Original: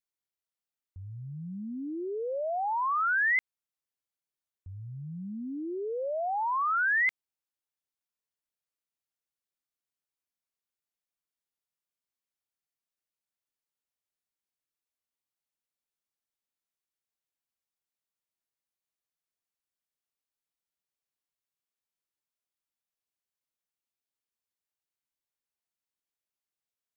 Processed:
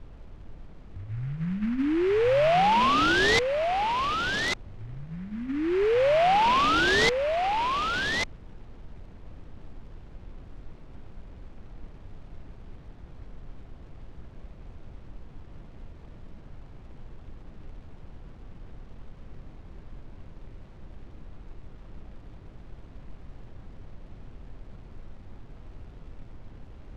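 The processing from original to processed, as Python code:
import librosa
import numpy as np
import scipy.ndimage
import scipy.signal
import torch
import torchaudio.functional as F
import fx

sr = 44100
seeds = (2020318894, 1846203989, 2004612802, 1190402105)

p1 = fx.highpass(x, sr, hz=150.0, slope=6)
p2 = fx.peak_eq(p1, sr, hz=2500.0, db=12.0, octaves=0.36)
p3 = fx.hum_notches(p2, sr, base_hz=50, count=5)
p4 = fx.rider(p3, sr, range_db=4, speed_s=0.5)
p5 = fx.dmg_noise_colour(p4, sr, seeds[0], colour='brown', level_db=-51.0)
p6 = fx.air_absorb(p5, sr, metres=460.0)
p7 = p6 + fx.echo_single(p6, sr, ms=1145, db=-5.0, dry=0)
p8 = fx.noise_mod_delay(p7, sr, seeds[1], noise_hz=1600.0, depth_ms=0.063)
y = p8 * 10.0 ** (8.5 / 20.0)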